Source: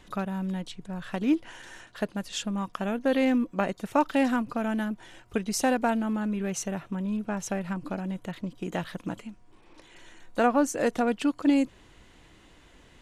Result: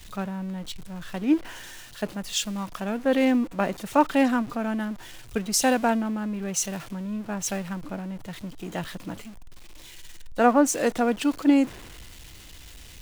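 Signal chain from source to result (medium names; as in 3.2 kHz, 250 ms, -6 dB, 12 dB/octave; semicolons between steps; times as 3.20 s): jump at every zero crossing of -36 dBFS; three bands expanded up and down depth 70%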